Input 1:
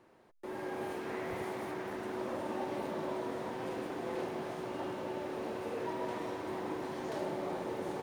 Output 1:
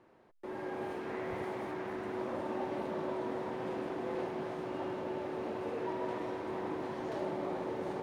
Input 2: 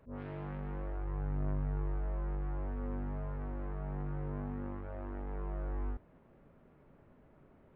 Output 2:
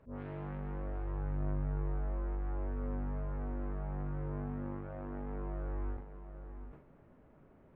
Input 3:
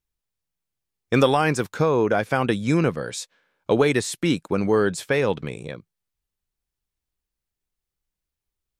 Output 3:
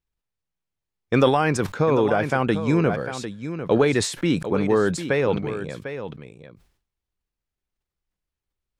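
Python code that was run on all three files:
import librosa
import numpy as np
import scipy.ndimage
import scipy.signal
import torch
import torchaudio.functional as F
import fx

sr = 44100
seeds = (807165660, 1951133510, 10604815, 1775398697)

y = fx.lowpass(x, sr, hz=3100.0, slope=6)
y = y + 10.0 ** (-10.5 / 20.0) * np.pad(y, (int(749 * sr / 1000.0), 0))[:len(y)]
y = fx.sustainer(y, sr, db_per_s=100.0)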